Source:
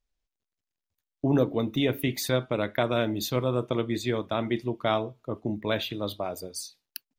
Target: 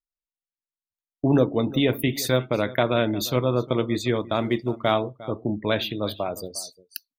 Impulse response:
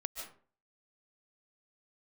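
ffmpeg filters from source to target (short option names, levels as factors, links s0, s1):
-filter_complex "[0:a]asplit=3[s0][s1][s2];[s0]afade=t=out:st=4.19:d=0.02[s3];[s1]acrusher=bits=6:mode=log:mix=0:aa=0.000001,afade=t=in:st=4.19:d=0.02,afade=t=out:st=4.92:d=0.02[s4];[s2]afade=t=in:st=4.92:d=0.02[s5];[s3][s4][s5]amix=inputs=3:normalize=0,aecho=1:1:353:0.126,afftdn=nr=23:nf=-49,volume=1.58"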